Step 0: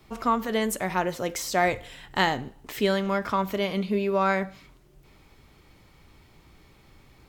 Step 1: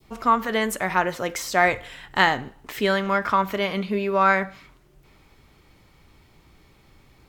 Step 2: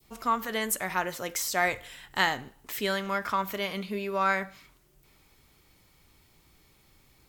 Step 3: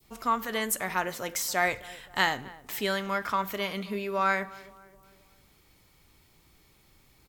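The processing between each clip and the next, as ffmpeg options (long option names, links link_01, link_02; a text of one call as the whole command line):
ffmpeg -i in.wav -af "adynamicequalizer=threshold=0.0126:dfrequency=1500:dqfactor=0.73:tfrequency=1500:tqfactor=0.73:attack=5:release=100:ratio=0.375:range=4:mode=boostabove:tftype=bell" out.wav
ffmpeg -i in.wav -af "crystalizer=i=2.5:c=0,volume=-8.5dB" out.wav
ffmpeg -i in.wav -filter_complex "[0:a]asplit=2[link_01][link_02];[link_02]adelay=263,lowpass=frequency=1500:poles=1,volume=-19dB,asplit=2[link_03][link_04];[link_04]adelay=263,lowpass=frequency=1500:poles=1,volume=0.51,asplit=2[link_05][link_06];[link_06]adelay=263,lowpass=frequency=1500:poles=1,volume=0.51,asplit=2[link_07][link_08];[link_08]adelay=263,lowpass=frequency=1500:poles=1,volume=0.51[link_09];[link_01][link_03][link_05][link_07][link_09]amix=inputs=5:normalize=0" out.wav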